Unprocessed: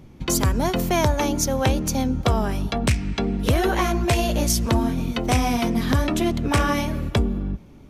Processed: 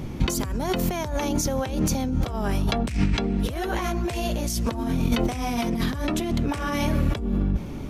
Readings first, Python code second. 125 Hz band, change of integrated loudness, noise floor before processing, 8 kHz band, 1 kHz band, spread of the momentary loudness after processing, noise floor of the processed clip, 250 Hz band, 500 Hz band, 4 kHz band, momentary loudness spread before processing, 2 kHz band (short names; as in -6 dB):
-3.5 dB, -3.5 dB, -45 dBFS, -5.5 dB, -5.5 dB, 3 LU, -32 dBFS, -2.0 dB, -4.5 dB, -4.0 dB, 4 LU, -5.0 dB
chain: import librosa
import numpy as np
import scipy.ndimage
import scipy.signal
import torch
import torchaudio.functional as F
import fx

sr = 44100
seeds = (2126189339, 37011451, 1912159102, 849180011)

y = fx.over_compress(x, sr, threshold_db=-30.0, ratio=-1.0)
y = y * librosa.db_to_amplitude(5.0)